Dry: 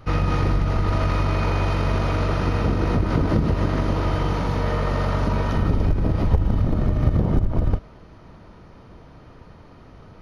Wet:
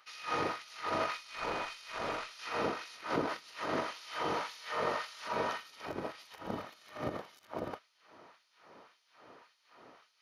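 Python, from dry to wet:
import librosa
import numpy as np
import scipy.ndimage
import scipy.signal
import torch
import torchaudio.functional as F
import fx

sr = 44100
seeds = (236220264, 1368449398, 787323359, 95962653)

y = fx.filter_lfo_highpass(x, sr, shape='sine', hz=1.8, low_hz=360.0, high_hz=4500.0, q=0.77)
y = fx.tube_stage(y, sr, drive_db=21.0, bias=0.65, at=(1.17, 2.39))
y = F.gain(torch.from_numpy(y), -4.5).numpy()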